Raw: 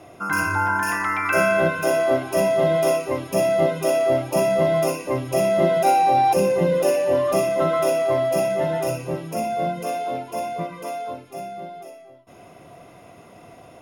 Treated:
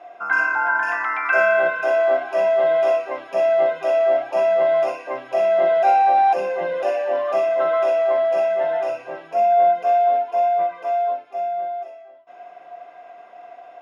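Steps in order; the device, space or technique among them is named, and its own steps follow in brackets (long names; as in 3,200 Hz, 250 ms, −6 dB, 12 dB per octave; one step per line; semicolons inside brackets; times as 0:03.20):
tin-can telephone (band-pass filter 630–2,900 Hz; hollow resonant body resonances 710/1,600 Hz, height 14 dB, ringing for 65 ms)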